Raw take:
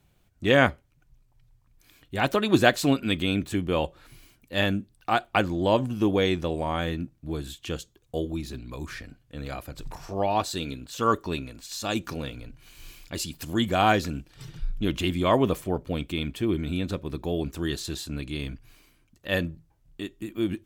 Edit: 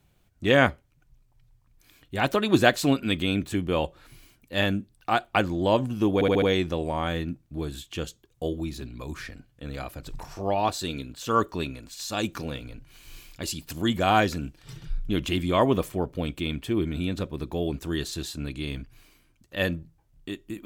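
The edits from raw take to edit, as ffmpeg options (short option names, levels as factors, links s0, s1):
-filter_complex "[0:a]asplit=5[s0][s1][s2][s3][s4];[s0]atrim=end=6.212[s5];[s1]atrim=start=6.138:end=6.212[s6];[s2]atrim=start=6.138:end=6.212[s7];[s3]atrim=start=6.138:end=6.212[s8];[s4]atrim=start=6.138[s9];[s5][s6]acrossfade=d=0.004:c1=hsin:c2=hsin[s10];[s10][s7]acrossfade=d=0.004:c1=hsin:c2=hsin[s11];[s11][s8]acrossfade=d=0.004:c1=hsin:c2=hsin[s12];[s12][s9]acrossfade=d=0.004:c1=hsin:c2=hsin"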